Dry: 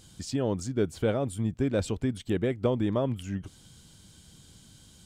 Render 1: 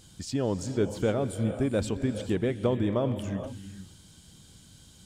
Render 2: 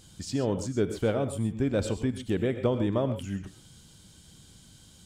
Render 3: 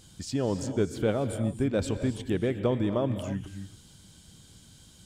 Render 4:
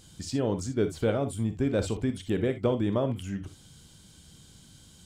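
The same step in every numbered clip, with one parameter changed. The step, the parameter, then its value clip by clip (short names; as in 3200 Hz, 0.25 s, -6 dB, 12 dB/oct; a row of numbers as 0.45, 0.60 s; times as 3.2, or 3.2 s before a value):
non-linear reverb, gate: 480, 150, 310, 80 ms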